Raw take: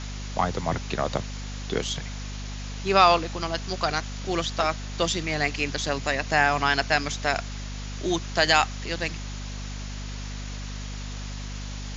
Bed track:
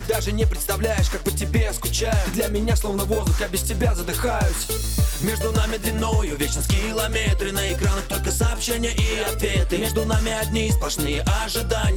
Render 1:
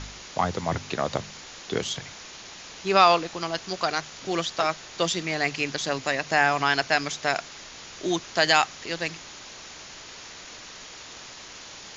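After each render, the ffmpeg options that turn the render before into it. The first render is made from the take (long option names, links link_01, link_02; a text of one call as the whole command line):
ffmpeg -i in.wav -af "bandreject=frequency=50:width_type=h:width=4,bandreject=frequency=100:width_type=h:width=4,bandreject=frequency=150:width_type=h:width=4,bandreject=frequency=200:width_type=h:width=4,bandreject=frequency=250:width_type=h:width=4" out.wav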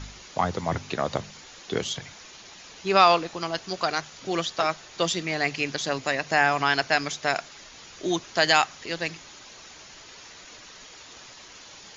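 ffmpeg -i in.wav -af "afftdn=noise_reduction=6:noise_floor=-43" out.wav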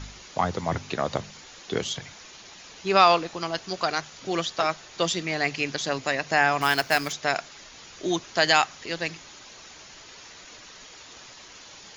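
ffmpeg -i in.wav -filter_complex "[0:a]asettb=1/sr,asplit=3[link_01][link_02][link_03];[link_01]atrim=end=6.614[link_04];[link_02]atrim=start=6.61:end=7.13,asetpts=PTS-STARTPTS,afade=type=in:duration=0.004:curve=qsin,afade=type=out:start_time=0.516:duration=0.004:curve=qsin,acrusher=bits=3:mode=log:mix=0:aa=0.000001[link_05];[link_03]atrim=start=7.126[link_06];[link_04][link_05]acrossfade=duration=0.004:curve1=hsin:curve2=qsin[link_07];[link_07][link_06]acrossfade=duration=0.004:curve1=qsin:curve2=hsin" out.wav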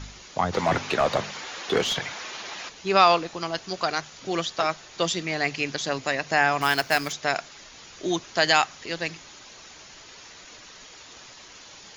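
ffmpeg -i in.wav -filter_complex "[0:a]asplit=3[link_01][link_02][link_03];[link_01]afade=type=out:start_time=0.52:duration=0.02[link_04];[link_02]asplit=2[link_05][link_06];[link_06]highpass=frequency=720:poles=1,volume=21dB,asoftclip=type=tanh:threshold=-11dB[link_07];[link_05][link_07]amix=inputs=2:normalize=0,lowpass=frequency=2000:poles=1,volume=-6dB,afade=type=in:start_time=0.52:duration=0.02,afade=type=out:start_time=2.68:duration=0.02[link_08];[link_03]afade=type=in:start_time=2.68:duration=0.02[link_09];[link_04][link_08][link_09]amix=inputs=3:normalize=0" out.wav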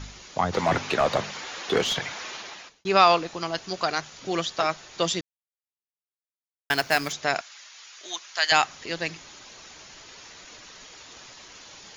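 ffmpeg -i in.wav -filter_complex "[0:a]asettb=1/sr,asplit=3[link_01][link_02][link_03];[link_01]atrim=end=7.414[link_04];[link_02]atrim=start=7.41:end=8.52,asetpts=PTS-STARTPTS,afade=type=in:duration=0.004:curve=qsin,afade=type=out:start_time=1.106:duration=0.004:curve=qsin,highpass=1200[link_05];[link_03]atrim=start=8.516[link_06];[link_04][link_05]acrossfade=duration=0.004:curve1=hsin:curve2=qsin[link_07];[link_07][link_06]acrossfade=duration=0.004:curve1=qsin:curve2=hsin,asplit=4[link_08][link_09][link_10][link_11];[link_08]atrim=end=2.85,asetpts=PTS-STARTPTS,afade=type=out:start_time=2.32:duration=0.53[link_12];[link_09]atrim=start=2.85:end=5.21,asetpts=PTS-STARTPTS,afade=type=in:duration=0.004:curve=hsin,afade=type=out:start_time=2.356:duration=0.004:curve=hsin[link_13];[link_10]atrim=start=5.21:end=6.7,asetpts=PTS-STARTPTS,volume=0[link_14];[link_11]atrim=start=6.7,asetpts=PTS-STARTPTS,afade=type=in:duration=0.004:curve=hsin[link_15];[link_12][link_13][link_14][link_15]concat=n=4:v=0:a=1" out.wav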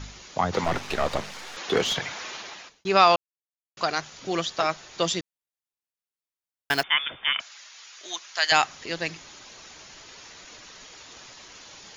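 ffmpeg -i in.wav -filter_complex "[0:a]asettb=1/sr,asplit=3[link_01][link_02][link_03];[link_01]atrim=end=0.644[link_04];[link_02]atrim=start=0.64:end=1.57,asetpts=PTS-STARTPTS,afade=type=in:duration=0.004:curve=qsin,afade=type=out:start_time=0.926:duration=0.004:curve=qsin,aeval=exprs='if(lt(val(0),0),0.251*val(0),val(0))':channel_layout=same[link_05];[link_03]atrim=start=1.566[link_06];[link_04][link_05]acrossfade=duration=0.004:curve1=hsin:curve2=qsin[link_07];[link_07][link_06]acrossfade=duration=0.004:curve1=qsin:curve2=hsin,asettb=1/sr,asplit=3[link_08][link_09][link_10];[link_08]atrim=end=6.834[link_11];[link_09]atrim=start=6.83:end=7.4,asetpts=PTS-STARTPTS,afade=type=in:duration=0.004:curve=qsin,afade=type=out:start_time=0.566:duration=0.004:curve=qsin,lowpass=frequency=3100:width_type=q:width=0.5098,lowpass=frequency=3100:width_type=q:width=0.6013,lowpass=frequency=3100:width_type=q:width=0.9,lowpass=frequency=3100:width_type=q:width=2.563,afreqshift=-3700[link_12];[link_10]atrim=start=7.396[link_13];[link_11][link_12]acrossfade=duration=0.004:curve1=hsin:curve2=qsin[link_14];[link_14][link_13]acrossfade=duration=0.004:curve1=qsin:curve2=hsin,asplit=3[link_15][link_16][link_17];[link_15]atrim=end=3.16,asetpts=PTS-STARTPTS,afade=type=out:start_time=3.156:duration=0.004:curve=hsin[link_18];[link_16]atrim=start=3.16:end=3.77,asetpts=PTS-STARTPTS,volume=0[link_19];[link_17]atrim=start=3.77,asetpts=PTS-STARTPTS,afade=type=in:duration=0.004:curve=hsin[link_20];[link_18][link_19][link_20]concat=n=3:v=0:a=1" out.wav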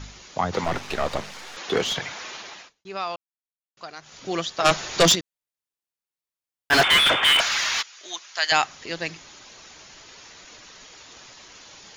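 ffmpeg -i in.wav -filter_complex "[0:a]asplit=3[link_01][link_02][link_03];[link_01]afade=type=out:start_time=4.64:duration=0.02[link_04];[link_02]aeval=exprs='0.316*sin(PI/2*2.82*val(0)/0.316)':channel_layout=same,afade=type=in:start_time=4.64:duration=0.02,afade=type=out:start_time=5.14:duration=0.02[link_05];[link_03]afade=type=in:start_time=5.14:duration=0.02[link_06];[link_04][link_05][link_06]amix=inputs=3:normalize=0,asplit=3[link_07][link_08][link_09];[link_07]afade=type=out:start_time=6.71:duration=0.02[link_10];[link_08]asplit=2[link_11][link_12];[link_12]highpass=frequency=720:poles=1,volume=36dB,asoftclip=type=tanh:threshold=-6.5dB[link_13];[link_11][link_13]amix=inputs=2:normalize=0,lowpass=frequency=2400:poles=1,volume=-6dB,afade=type=in:start_time=6.71:duration=0.02,afade=type=out:start_time=7.81:duration=0.02[link_14];[link_09]afade=type=in:start_time=7.81:duration=0.02[link_15];[link_10][link_14][link_15]amix=inputs=3:normalize=0,asplit=3[link_16][link_17][link_18];[link_16]atrim=end=2.74,asetpts=PTS-STARTPTS,afade=type=out:start_time=2.61:duration=0.13:silence=0.223872[link_19];[link_17]atrim=start=2.74:end=4.01,asetpts=PTS-STARTPTS,volume=-13dB[link_20];[link_18]atrim=start=4.01,asetpts=PTS-STARTPTS,afade=type=in:duration=0.13:silence=0.223872[link_21];[link_19][link_20][link_21]concat=n=3:v=0:a=1" out.wav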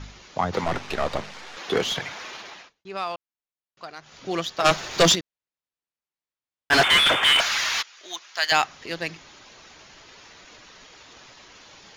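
ffmpeg -i in.wav -af "adynamicsmooth=sensitivity=4.5:basefreq=5700" out.wav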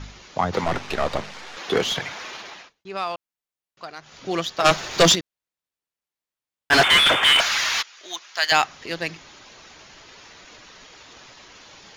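ffmpeg -i in.wav -af "volume=2dB" out.wav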